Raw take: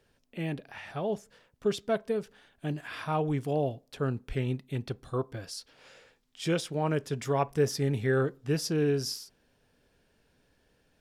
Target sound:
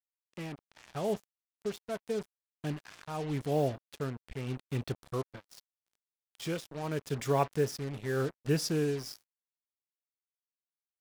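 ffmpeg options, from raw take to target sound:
ffmpeg -i in.wav -af "tremolo=f=0.82:d=0.69,acrusher=bits=6:mix=0:aa=0.5" out.wav

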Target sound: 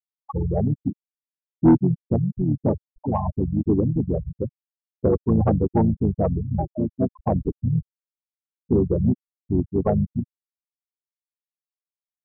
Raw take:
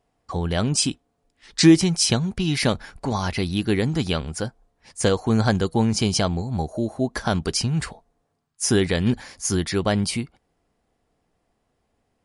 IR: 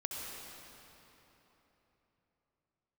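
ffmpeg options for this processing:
-filter_complex "[0:a]highshelf=frequency=1500:width_type=q:width=1.5:gain=-10,asplit=3[link_01][link_02][link_03];[link_02]asetrate=33038,aresample=44100,atempo=1.33484,volume=-3dB[link_04];[link_03]asetrate=37084,aresample=44100,atempo=1.18921,volume=-17dB[link_05];[link_01][link_04][link_05]amix=inputs=3:normalize=0,afftfilt=real='re*gte(hypot(re,im),0.251)':imag='im*gte(hypot(re,im),0.251)':win_size=1024:overlap=0.75,aresample=11025,asoftclip=type=tanh:threshold=-8dB,aresample=44100"

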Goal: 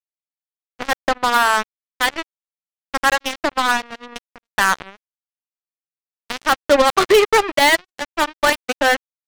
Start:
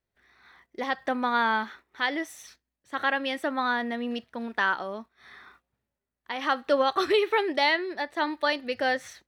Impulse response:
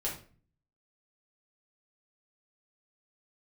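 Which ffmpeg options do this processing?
-filter_complex "[0:a]anlmdn=0.1,asplit=2[link_01][link_02];[link_02]adynamicsmooth=sensitivity=5.5:basefreq=1400,volume=2dB[link_03];[link_01][link_03]amix=inputs=2:normalize=0,acrusher=bits=2:mix=0:aa=0.5,volume=2.5dB"

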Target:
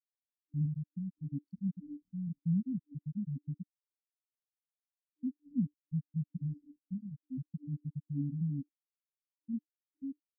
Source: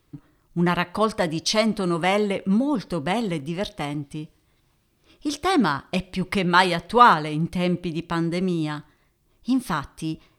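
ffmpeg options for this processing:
ffmpeg -i in.wav -af "flanger=delay=2:depth=7.9:regen=-48:speed=0.21:shape=triangular,afftfilt=real='re*gte(hypot(re,im),0.316)':imag='im*gte(hypot(re,im),0.316)':win_size=1024:overlap=0.75,bass=frequency=250:gain=4,treble=frequency=4000:gain=14,acompressor=threshold=-45dB:ratio=1.5,asetrate=38170,aresample=44100,atempo=1.15535,afftfilt=real='re*(1-between(b*sr/4096,300,4400))':imag='im*(1-between(b*sr/4096,300,4400))':win_size=4096:overlap=0.75" out.wav

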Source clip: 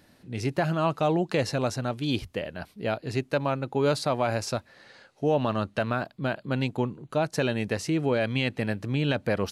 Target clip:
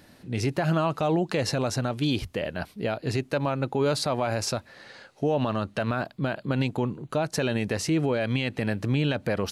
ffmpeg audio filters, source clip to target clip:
ffmpeg -i in.wav -af "alimiter=limit=-20.5dB:level=0:latency=1:release=73,volume=5dB" out.wav

